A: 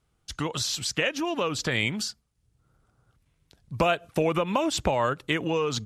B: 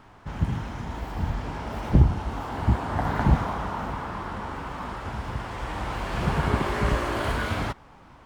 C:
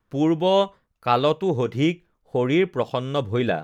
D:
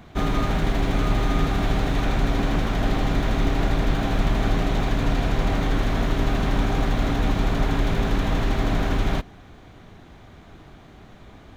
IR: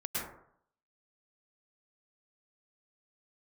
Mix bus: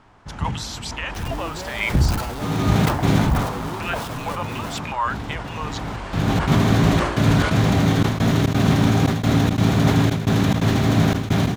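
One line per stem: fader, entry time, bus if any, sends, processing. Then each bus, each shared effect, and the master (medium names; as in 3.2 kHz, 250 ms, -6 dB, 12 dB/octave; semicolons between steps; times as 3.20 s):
-5.0 dB, 0.00 s, no send, step-sequenced high-pass 6.1 Hz 710–2300 Hz
-0.5 dB, 0.00 s, no send, Chebyshev low-pass 8.1 kHz, order 2
-12.0 dB, 1.15 s, no send, one-bit comparator
+3.0 dB, 2.25 s, no send, high-pass 96 Hz 24 dB/octave; trance gate ".xxxxxx..xxx" 174 bpm -24 dB; tone controls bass +9 dB, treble +7 dB; auto duck -16 dB, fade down 0.35 s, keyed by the first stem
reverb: none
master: decay stretcher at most 61 dB/s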